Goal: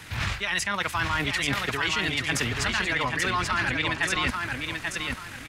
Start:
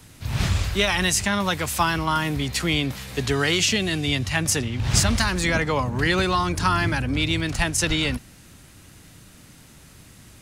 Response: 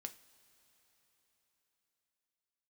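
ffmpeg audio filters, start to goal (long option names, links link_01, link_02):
-af "equalizer=frequency=1800:width=0.49:gain=13.5,areverse,acompressor=threshold=-23dB:ratio=16,areverse,atempo=1.9,aecho=1:1:835|1670|2505|3340:0.631|0.177|0.0495|0.0139"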